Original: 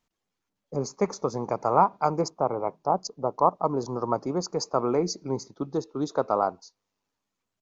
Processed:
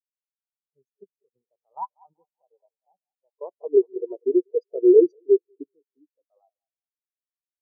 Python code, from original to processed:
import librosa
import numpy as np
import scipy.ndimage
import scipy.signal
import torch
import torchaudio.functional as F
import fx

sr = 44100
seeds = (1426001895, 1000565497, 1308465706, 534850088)

y = fx.peak_eq(x, sr, hz=400.0, db=12.5, octaves=1.1, at=(3.37, 5.72))
y = fx.level_steps(y, sr, step_db=10)
y = fx.high_shelf(y, sr, hz=4100.0, db=10.5)
y = fx.echo_banded(y, sr, ms=192, feedback_pct=64, hz=830.0, wet_db=-7.5)
y = fx.spectral_expand(y, sr, expansion=4.0)
y = F.gain(torch.from_numpy(y), 4.5).numpy()